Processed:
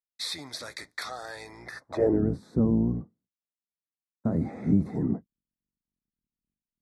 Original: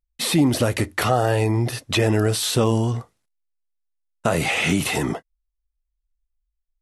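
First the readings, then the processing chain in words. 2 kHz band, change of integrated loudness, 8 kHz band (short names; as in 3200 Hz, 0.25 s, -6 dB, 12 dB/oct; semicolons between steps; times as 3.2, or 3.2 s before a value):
-16.0 dB, -7.5 dB, under -15 dB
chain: octaver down 1 oct, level +1 dB; Butterworth band-stop 2900 Hz, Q 1.5; band-pass sweep 3300 Hz -> 220 Hz, 1.57–2.23; gain +1 dB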